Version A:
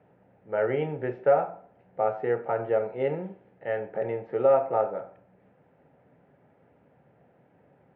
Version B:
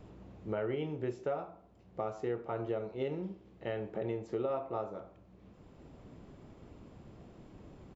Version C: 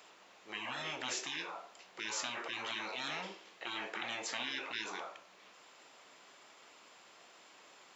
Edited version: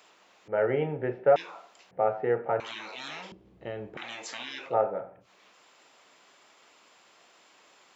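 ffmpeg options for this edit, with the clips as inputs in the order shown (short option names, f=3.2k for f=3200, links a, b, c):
-filter_complex "[0:a]asplit=3[a][b][c];[2:a]asplit=5[d][e][f][g][h];[d]atrim=end=0.482[i];[a]atrim=start=0.478:end=1.362[j];[e]atrim=start=1.358:end=1.912[k];[b]atrim=start=1.908:end=2.602[l];[f]atrim=start=2.598:end=3.322[m];[1:a]atrim=start=3.318:end=3.972[n];[g]atrim=start=3.968:end=4.75[o];[c]atrim=start=4.65:end=5.3[p];[h]atrim=start=5.2[q];[i][j]acrossfade=d=0.004:c1=hsin:c2=hsin[r];[r][k]acrossfade=d=0.004:c1=hsin:c2=hsin[s];[s][l]acrossfade=d=0.004:c1=hsin:c2=hsin[t];[t][m]acrossfade=d=0.004:c1=hsin:c2=hsin[u];[u][n]acrossfade=d=0.004:c1=hsin:c2=hsin[v];[v][o]acrossfade=d=0.004:c1=hsin:c2=hsin[w];[w][p]acrossfade=d=0.1:c1=tri:c2=tri[x];[x][q]acrossfade=d=0.1:c1=tri:c2=tri"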